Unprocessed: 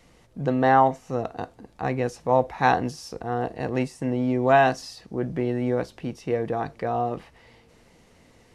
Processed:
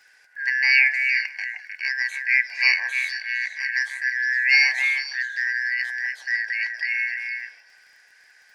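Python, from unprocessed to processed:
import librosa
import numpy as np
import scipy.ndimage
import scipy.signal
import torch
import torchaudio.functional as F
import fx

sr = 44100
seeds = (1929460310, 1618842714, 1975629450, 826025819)

y = fx.band_shuffle(x, sr, order='3142')
y = scipy.signal.sosfilt(scipy.signal.butter(4, 410.0, 'highpass', fs=sr, output='sos'), y)
y = fx.echo_stepped(y, sr, ms=154, hz=740.0, octaves=1.4, feedback_pct=70, wet_db=-2)
y = fx.dmg_crackle(y, sr, seeds[0], per_s=22.0, level_db=-47.0)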